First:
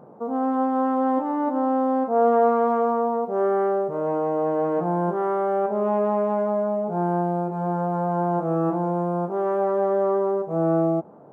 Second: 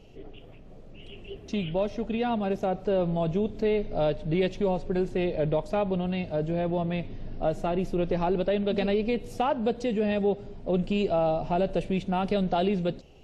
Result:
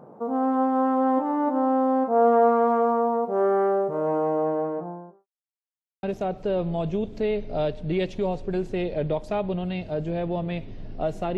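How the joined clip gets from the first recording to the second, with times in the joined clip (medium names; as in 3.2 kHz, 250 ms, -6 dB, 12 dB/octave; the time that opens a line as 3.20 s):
first
4.23–5.27 s: studio fade out
5.27–6.03 s: mute
6.03 s: go over to second from 2.45 s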